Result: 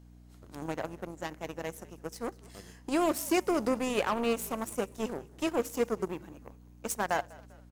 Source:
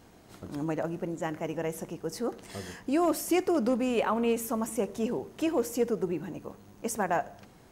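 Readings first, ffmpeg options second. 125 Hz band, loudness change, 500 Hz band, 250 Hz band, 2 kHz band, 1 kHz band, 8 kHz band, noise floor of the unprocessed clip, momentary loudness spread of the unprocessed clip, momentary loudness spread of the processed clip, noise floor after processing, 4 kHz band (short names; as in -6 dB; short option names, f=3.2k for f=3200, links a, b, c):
-5.5 dB, -2.5 dB, -3.0 dB, -4.0 dB, +1.0 dB, -1.0 dB, -1.0 dB, -55 dBFS, 14 LU, 17 LU, -54 dBFS, +1.5 dB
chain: -filter_complex "[0:a]highshelf=f=3.7k:g=5.5,aeval=exprs='0.15*(cos(1*acos(clip(val(0)/0.15,-1,1)))-cos(1*PI/2))+0.0188*(cos(3*acos(clip(val(0)/0.15,-1,1)))-cos(3*PI/2))+0.00168*(cos(5*acos(clip(val(0)/0.15,-1,1)))-cos(5*PI/2))+0.0106*(cos(7*acos(clip(val(0)/0.15,-1,1)))-cos(7*PI/2))':c=same,aeval=exprs='val(0)+0.00316*(sin(2*PI*60*n/s)+sin(2*PI*2*60*n/s)/2+sin(2*PI*3*60*n/s)/3+sin(2*PI*4*60*n/s)/4+sin(2*PI*5*60*n/s)/5)':c=same,lowshelf=f=160:g=-3.5,asplit=2[a][b];[b]asplit=3[c][d][e];[c]adelay=197,afreqshift=-62,volume=-22.5dB[f];[d]adelay=394,afreqshift=-124,volume=-29.2dB[g];[e]adelay=591,afreqshift=-186,volume=-36dB[h];[f][g][h]amix=inputs=3:normalize=0[i];[a][i]amix=inputs=2:normalize=0"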